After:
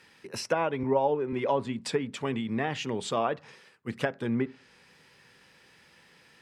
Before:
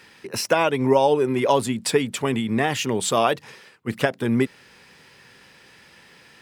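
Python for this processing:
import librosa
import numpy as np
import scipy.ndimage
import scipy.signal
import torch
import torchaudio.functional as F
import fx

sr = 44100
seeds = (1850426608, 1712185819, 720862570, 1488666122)

y = fx.env_lowpass_down(x, sr, base_hz=1800.0, full_db=-14.5)
y = fx.rev_fdn(y, sr, rt60_s=0.37, lf_ratio=1.1, hf_ratio=0.5, size_ms=36.0, drr_db=17.0)
y = fx.band_widen(y, sr, depth_pct=40, at=(0.83, 1.33))
y = y * 10.0 ** (-8.0 / 20.0)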